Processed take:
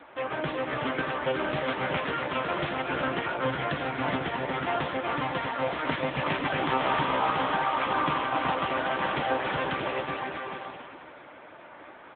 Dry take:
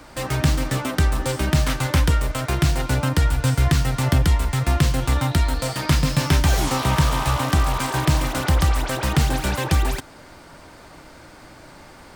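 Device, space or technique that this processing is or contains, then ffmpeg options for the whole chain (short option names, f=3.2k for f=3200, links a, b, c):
satellite phone: -af "highpass=340,lowpass=3.4k,aecho=1:1:370|629|810.3|937.2|1026:0.631|0.398|0.251|0.158|0.1,aecho=1:1:488:0.178" -ar 8000 -c:a libopencore_amrnb -b:a 6700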